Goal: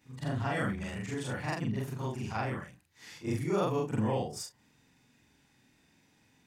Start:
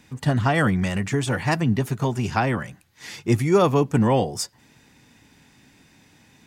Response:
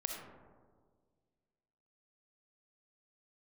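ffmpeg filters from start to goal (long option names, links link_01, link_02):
-af "afftfilt=real='re':imag='-im':win_size=4096:overlap=0.75,volume=-7.5dB"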